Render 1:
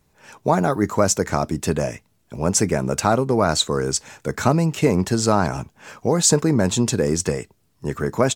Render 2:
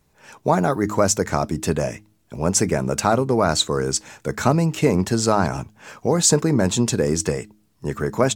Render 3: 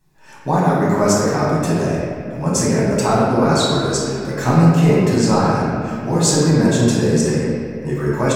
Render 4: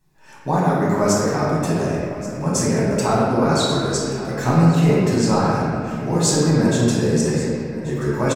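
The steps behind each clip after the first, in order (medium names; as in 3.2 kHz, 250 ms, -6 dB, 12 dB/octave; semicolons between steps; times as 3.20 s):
de-hum 105.5 Hz, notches 3
flange 0.51 Hz, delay 2.6 ms, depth 2.3 ms, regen +69%; reverberation RT60 2.6 s, pre-delay 6 ms, DRR -7.5 dB; trim -2 dB
delay 1131 ms -16.5 dB; trim -2.5 dB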